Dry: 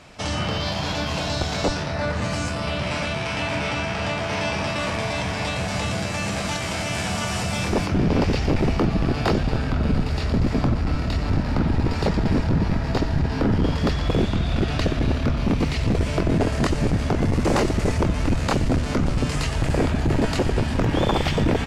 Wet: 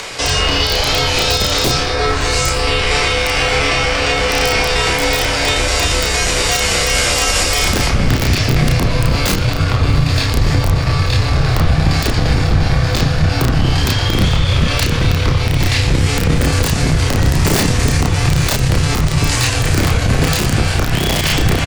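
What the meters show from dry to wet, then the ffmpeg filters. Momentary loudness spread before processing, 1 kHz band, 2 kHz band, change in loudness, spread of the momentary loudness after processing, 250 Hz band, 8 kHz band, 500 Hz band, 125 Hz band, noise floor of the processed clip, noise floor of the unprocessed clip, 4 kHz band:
4 LU, +7.5 dB, +11.5 dB, +9.0 dB, 2 LU, +3.0 dB, +16.5 dB, +6.0 dB, +8.5 dB, -17 dBFS, -27 dBFS, +14.0 dB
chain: -filter_complex "[0:a]highshelf=f=2400:g=9.5,acrossover=split=400[s0][s1];[s1]acompressor=mode=upward:threshold=0.0447:ratio=2.5[s2];[s0][s2]amix=inputs=2:normalize=0,aeval=exprs='(mod(3.35*val(0)+1,2)-1)/3.35':c=same,afreqshift=-160,asplit=2[s3][s4];[s4]adelay=32,volume=0.631[s5];[s3][s5]amix=inputs=2:normalize=0,asplit=2[s6][s7];[s7]aecho=0:1:903|1806|2709:0.075|0.0315|0.0132[s8];[s6][s8]amix=inputs=2:normalize=0,alimiter=level_in=2.99:limit=0.891:release=50:level=0:latency=1,volume=0.75"

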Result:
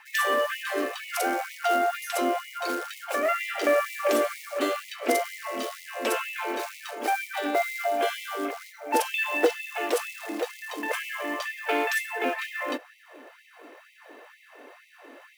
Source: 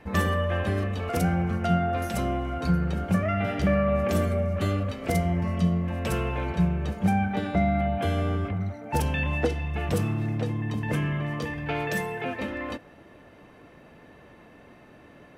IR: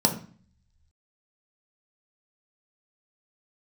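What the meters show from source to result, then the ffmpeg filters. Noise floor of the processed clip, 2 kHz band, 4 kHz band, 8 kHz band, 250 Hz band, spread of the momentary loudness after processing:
-55 dBFS, +4.5 dB, +5.5 dB, +6.5 dB, -8.0 dB, 8 LU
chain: -af "acrusher=bits=6:mode=log:mix=0:aa=0.000001,afftfilt=real='re*gte(b*sr/1024,230*pow(1900/230,0.5+0.5*sin(2*PI*2.1*pts/sr)))':imag='im*gte(b*sr/1024,230*pow(1900/230,0.5+0.5*sin(2*PI*2.1*pts/sr)))':win_size=1024:overlap=0.75,volume=1.78"

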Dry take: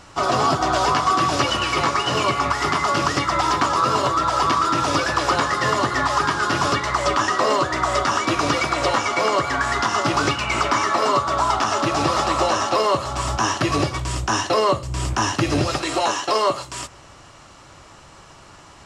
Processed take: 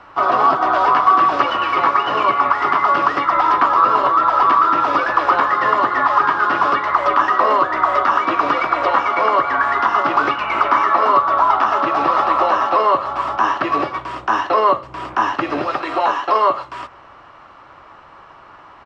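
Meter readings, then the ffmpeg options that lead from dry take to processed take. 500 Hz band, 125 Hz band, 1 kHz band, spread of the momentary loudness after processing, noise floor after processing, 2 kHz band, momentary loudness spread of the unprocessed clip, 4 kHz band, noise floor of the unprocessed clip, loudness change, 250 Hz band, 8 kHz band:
+1.5 dB, -12.5 dB, +6.5 dB, 6 LU, -43 dBFS, +2.5 dB, 3 LU, -6.5 dB, -46 dBFS, +4.0 dB, -2.0 dB, under -15 dB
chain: -filter_complex "[0:a]firequalizer=gain_entry='entry(140,0);entry(280,6);entry(1100,15);entry(1900,9);entry(7200,-17)':delay=0.05:min_phase=1,acrossover=split=160|1200|3200[s0][s1][s2][s3];[s0]acompressor=threshold=0.0112:ratio=6[s4];[s4][s1][s2][s3]amix=inputs=4:normalize=0,volume=0.422"

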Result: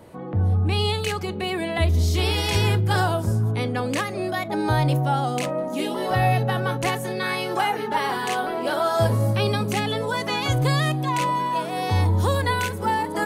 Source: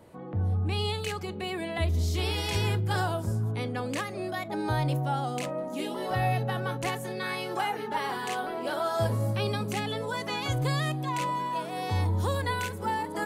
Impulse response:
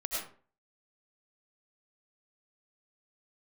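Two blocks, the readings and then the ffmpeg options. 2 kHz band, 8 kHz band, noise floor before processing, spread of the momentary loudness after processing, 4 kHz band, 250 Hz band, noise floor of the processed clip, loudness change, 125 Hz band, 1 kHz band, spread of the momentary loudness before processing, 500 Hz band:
+7.0 dB, +6.5 dB, -38 dBFS, 5 LU, +7.0 dB, +7.0 dB, -31 dBFS, +7.0 dB, +7.0 dB, +7.0 dB, 5 LU, +7.0 dB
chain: -af "bandreject=f=7400:w=26,volume=2.24"

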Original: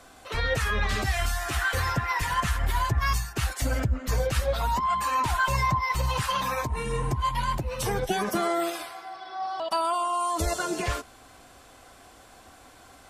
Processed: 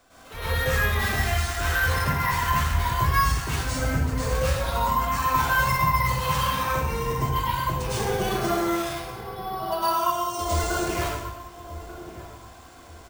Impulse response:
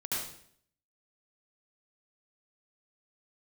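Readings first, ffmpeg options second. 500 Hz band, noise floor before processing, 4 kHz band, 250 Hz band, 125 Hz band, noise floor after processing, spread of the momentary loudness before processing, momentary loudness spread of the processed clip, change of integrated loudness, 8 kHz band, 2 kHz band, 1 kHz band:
+2.0 dB, -52 dBFS, +2.0 dB, +3.5 dB, +3.5 dB, -46 dBFS, 6 LU, 14 LU, +2.5 dB, +2.0 dB, +3.5 dB, +2.5 dB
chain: -filter_complex "[0:a]asplit=2[s0][s1];[s1]adelay=1187,lowpass=f=820:p=1,volume=0.266,asplit=2[s2][s3];[s3]adelay=1187,lowpass=f=820:p=1,volume=0.38,asplit=2[s4][s5];[s5]adelay=1187,lowpass=f=820:p=1,volume=0.38,asplit=2[s6][s7];[s7]adelay=1187,lowpass=f=820:p=1,volume=0.38[s8];[s0][s2][s4][s6][s8]amix=inputs=5:normalize=0[s9];[1:a]atrim=start_sample=2205,asetrate=29547,aresample=44100[s10];[s9][s10]afir=irnorm=-1:irlink=0,acrusher=samples=3:mix=1:aa=0.000001,volume=0.531"

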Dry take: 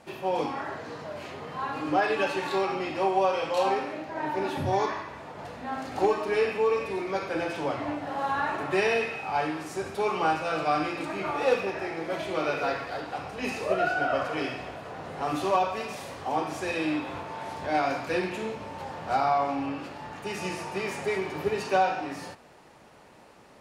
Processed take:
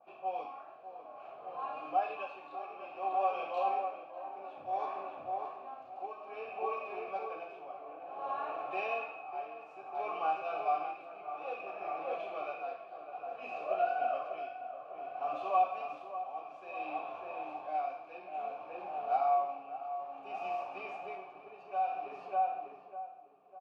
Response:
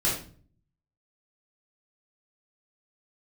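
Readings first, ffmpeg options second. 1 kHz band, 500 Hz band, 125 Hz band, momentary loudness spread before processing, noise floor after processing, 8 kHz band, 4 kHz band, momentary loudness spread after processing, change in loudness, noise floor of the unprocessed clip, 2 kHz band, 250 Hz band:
-5.0 dB, -11.0 dB, under -25 dB, 12 LU, -53 dBFS, under -30 dB, -18.5 dB, 14 LU, -8.5 dB, -53 dBFS, -14.5 dB, -22.0 dB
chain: -filter_complex "[0:a]highshelf=f=4400:g=-11,asplit=2[s0][s1];[s1]adelay=599,lowpass=f=1500:p=1,volume=0.668,asplit=2[s2][s3];[s3]adelay=599,lowpass=f=1500:p=1,volume=0.55,asplit=2[s4][s5];[s5]adelay=599,lowpass=f=1500:p=1,volume=0.55,asplit=2[s6][s7];[s7]adelay=599,lowpass=f=1500:p=1,volume=0.55,asplit=2[s8][s9];[s9]adelay=599,lowpass=f=1500:p=1,volume=0.55,asplit=2[s10][s11];[s11]adelay=599,lowpass=f=1500:p=1,volume=0.55,asplit=2[s12][s13];[s13]adelay=599,lowpass=f=1500:p=1,volume=0.55,asplit=2[s14][s15];[s15]adelay=599,lowpass=f=1500:p=1,volume=0.55[s16];[s2][s4][s6][s8][s10][s12][s14][s16]amix=inputs=8:normalize=0[s17];[s0][s17]amix=inputs=2:normalize=0,tremolo=f=0.58:d=0.65,asplit=3[s18][s19][s20];[s18]bandpass=f=730:t=q:w=8,volume=1[s21];[s19]bandpass=f=1090:t=q:w=8,volume=0.501[s22];[s20]bandpass=f=2440:t=q:w=8,volume=0.355[s23];[s21][s22][s23]amix=inputs=3:normalize=0,adynamicequalizer=threshold=0.00316:dfrequency=2000:dqfactor=0.7:tfrequency=2000:tqfactor=0.7:attack=5:release=100:ratio=0.375:range=3.5:mode=boostabove:tftype=highshelf"

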